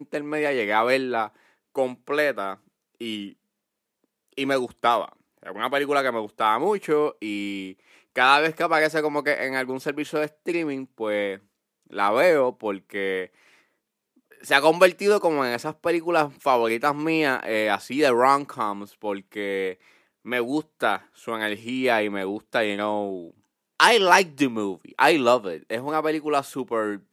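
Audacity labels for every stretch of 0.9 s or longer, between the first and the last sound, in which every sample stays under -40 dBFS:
3.300000	4.380000	silence
13.260000	14.320000	silence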